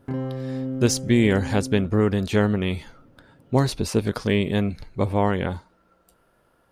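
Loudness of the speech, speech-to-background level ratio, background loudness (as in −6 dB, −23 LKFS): −23.0 LKFS, 9.0 dB, −32.0 LKFS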